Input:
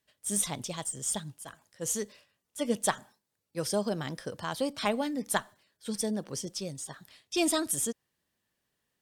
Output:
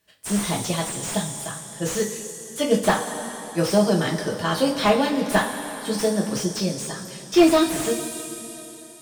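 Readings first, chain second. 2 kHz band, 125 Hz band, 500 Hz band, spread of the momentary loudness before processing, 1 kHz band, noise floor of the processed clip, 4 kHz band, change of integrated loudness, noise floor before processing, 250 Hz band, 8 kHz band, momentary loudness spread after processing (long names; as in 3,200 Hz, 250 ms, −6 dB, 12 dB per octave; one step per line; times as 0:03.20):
+11.0 dB, +12.5 dB, +12.0 dB, 13 LU, +11.0 dB, −42 dBFS, +9.0 dB, +9.0 dB, −83 dBFS, +12.0 dB, +4.0 dB, 13 LU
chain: coupled-rooms reverb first 0.23 s, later 3.6 s, from −18 dB, DRR −2.5 dB
slew-rate limiting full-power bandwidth 96 Hz
level +7.5 dB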